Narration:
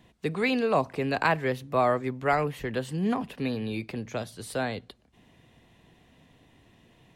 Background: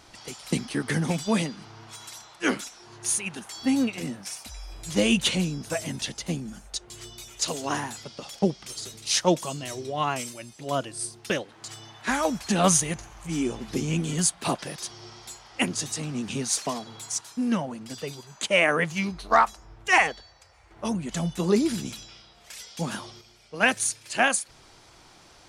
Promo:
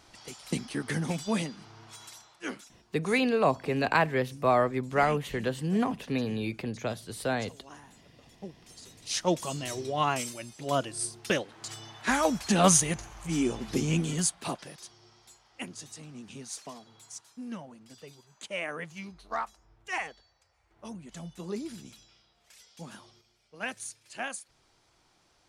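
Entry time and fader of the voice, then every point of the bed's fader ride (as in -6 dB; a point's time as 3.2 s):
2.70 s, 0.0 dB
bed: 2.05 s -5 dB
3.03 s -21 dB
8.37 s -21 dB
9.57 s -0.5 dB
13.95 s -0.5 dB
15.01 s -14 dB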